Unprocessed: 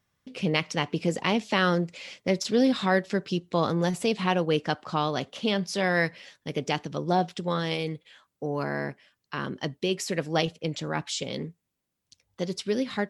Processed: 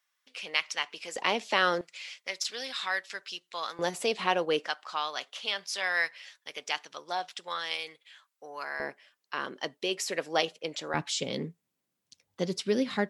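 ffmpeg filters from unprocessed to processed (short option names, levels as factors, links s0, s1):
-af "asetnsamples=n=441:p=0,asendcmd='1.16 highpass f 470;1.81 highpass f 1400;3.79 highpass f 430;4.67 highpass f 1100;8.8 highpass f 470;10.94 highpass f 140',highpass=1200"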